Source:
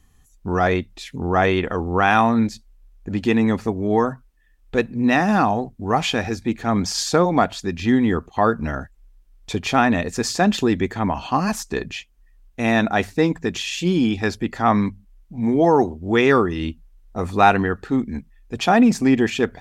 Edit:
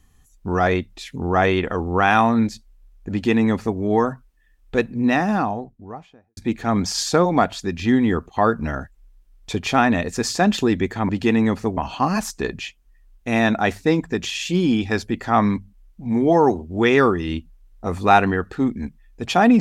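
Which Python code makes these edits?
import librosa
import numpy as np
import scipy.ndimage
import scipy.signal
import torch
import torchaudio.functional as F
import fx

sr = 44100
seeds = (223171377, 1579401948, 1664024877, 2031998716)

y = fx.studio_fade_out(x, sr, start_s=4.83, length_s=1.54)
y = fx.edit(y, sr, fx.duplicate(start_s=3.11, length_s=0.68, to_s=11.09), tone=tone)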